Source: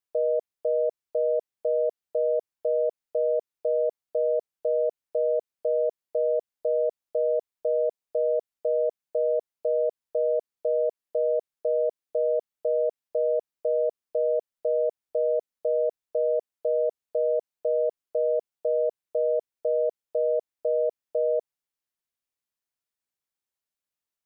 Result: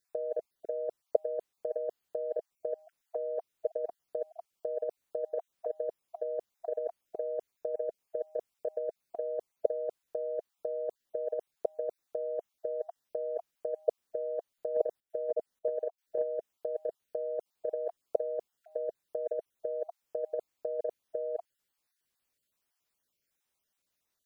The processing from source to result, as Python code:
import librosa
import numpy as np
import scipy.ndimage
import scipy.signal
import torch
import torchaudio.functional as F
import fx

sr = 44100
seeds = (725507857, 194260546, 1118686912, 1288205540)

y = fx.spec_dropout(x, sr, seeds[0], share_pct=25)
y = fx.step_gate(y, sr, bpm=153, pattern='.xx.xx.xx', floor_db=-12.0, edge_ms=4.5, at=(14.75, 16.21), fade=0.02)
y = fx.over_compress(y, sr, threshold_db=-30.0, ratio=-0.5)